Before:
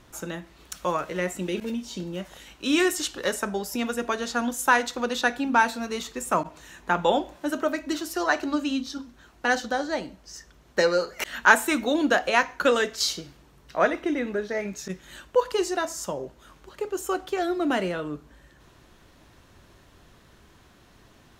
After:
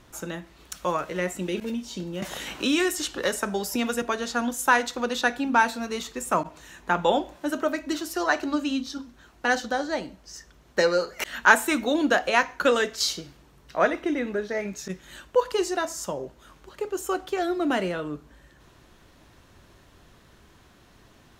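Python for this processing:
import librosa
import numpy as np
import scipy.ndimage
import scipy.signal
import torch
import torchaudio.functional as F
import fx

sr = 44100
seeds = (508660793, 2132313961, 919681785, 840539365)

y = fx.band_squash(x, sr, depth_pct=70, at=(2.22, 4.02))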